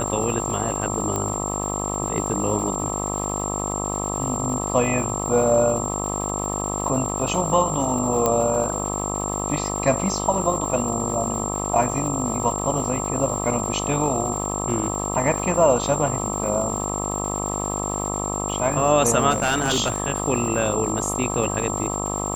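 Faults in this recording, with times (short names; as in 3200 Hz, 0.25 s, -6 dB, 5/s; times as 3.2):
buzz 50 Hz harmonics 26 -28 dBFS
crackle 440/s -33 dBFS
tone 7400 Hz -28 dBFS
1.16 pop -12 dBFS
8.26 pop -6 dBFS
19.3–20 clipped -15.5 dBFS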